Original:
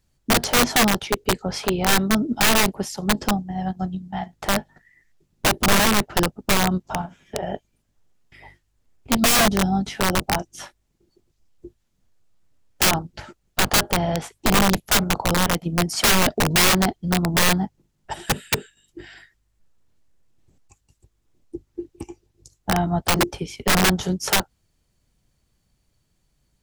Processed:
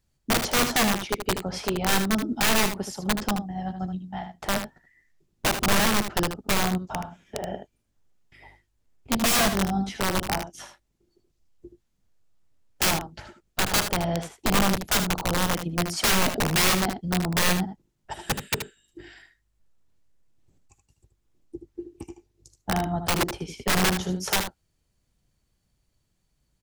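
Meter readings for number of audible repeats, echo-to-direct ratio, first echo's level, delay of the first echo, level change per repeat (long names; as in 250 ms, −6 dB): 1, −8.5 dB, −8.5 dB, 77 ms, repeats not evenly spaced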